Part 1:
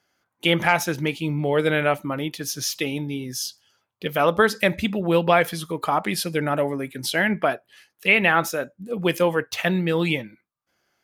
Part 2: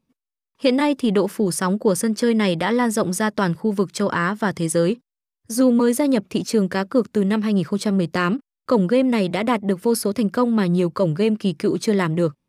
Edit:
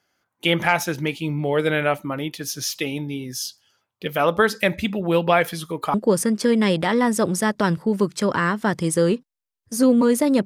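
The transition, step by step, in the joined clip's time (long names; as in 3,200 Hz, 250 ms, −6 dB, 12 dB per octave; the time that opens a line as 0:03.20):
part 1
0:05.94: continue with part 2 from 0:01.72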